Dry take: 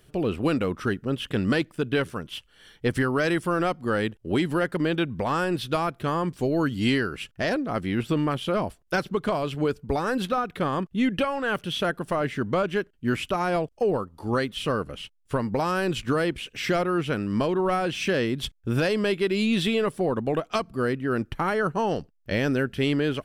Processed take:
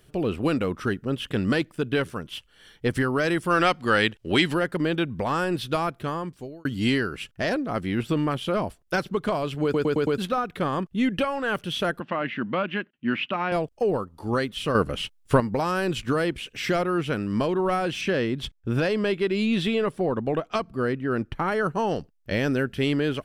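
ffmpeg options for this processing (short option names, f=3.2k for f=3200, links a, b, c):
-filter_complex "[0:a]asplit=3[a][b][c];[a]afade=t=out:st=3.49:d=0.02[d];[b]equalizer=f=3.2k:w=0.38:g=11.5,afade=t=in:st=3.49:d=0.02,afade=t=out:st=4.53:d=0.02[e];[c]afade=t=in:st=4.53:d=0.02[f];[d][e][f]amix=inputs=3:normalize=0,asettb=1/sr,asplit=3[g][h][i];[g]atrim=end=12.004[j];[h]atrim=start=12:end=13.52,asetpts=PTS-STARTPTS,afade=t=in:d=0.004:c=qsin,afade=t=out:st=1.516:d=0.004:c=qsin,highpass=200,equalizer=f=220:t=q:w=4:g=5,equalizer=f=420:t=q:w=4:g=-9,equalizer=f=670:t=q:w=4:g=-3,equalizer=f=1.9k:t=q:w=4:g=3,equalizer=f=2.7k:t=q:w=4:g=6,lowpass=f=3.6k:w=0.5412,lowpass=f=3.6k:w=1.3066[k];[i]atrim=start=13.516[l];[j][k]acrossfade=d=0.004:c1=hsin:c2=qsin[m];[m][l]acrossfade=d=0.004:c1=qsin:c2=hsin,asettb=1/sr,asplit=3[n][o][p];[n]atrim=end=18.014[q];[o]atrim=start=18.01:end=21.52,asetpts=PTS-STARTPTS,afade=t=in:d=0.004:c=qsin,afade=t=out:st=3.506:d=0.004:c=qsin,highshelf=f=6.2k:g=-10[r];[p]atrim=start=21.516[s];[q][r]acrossfade=d=0.004:c1=hsin:c2=qsin[t];[t][s]acrossfade=d=0.004:c1=qsin:c2=hsin,asplit=9[u][v][w][x][y][z][aa][ab][ac];[u]atrim=end=6.65,asetpts=PTS-STARTPTS,afade=t=out:st=5.88:d=0.77[ad];[v]atrim=start=6.65:end=9.742,asetpts=PTS-STARTPTS,afade=t=in:d=0.004:c=hsin[ae];[w]atrim=start=9.628:end=9.742[af];[x]atrim=start=9.628:end=9.742[ag];[y]atrim=start=9.628:end=9.742[ah];[z]atrim=start=9.628:end=9.742[ai];[aa]atrim=start=10.178:end=14.752[aj];[ab]atrim=start=14.748:end=15.402,asetpts=PTS-STARTPTS,volume=7.5dB[ak];[ac]atrim=start=15.398[al];[ad][ae]concat=n=2:v=0:a=1[am];[am][af]acrossfade=d=0.004:c1=hsin:c2=hsin[an];[an][ag]acrossfade=d=0.004:c1=hsin:c2=hsin[ao];[ao][ah]acrossfade=d=0.004:c1=hsin:c2=hsin[ap];[ap][ai]acrossfade=d=0.004:c1=hsin:c2=hsin[aq];[aq][aj]acrossfade=d=0.004:c1=hsin:c2=hsin[ar];[ar][ak]acrossfade=d=0.004:c1=hsin:c2=hsin[as];[as][al]acrossfade=d=0.004:c1=hsin:c2=hsin"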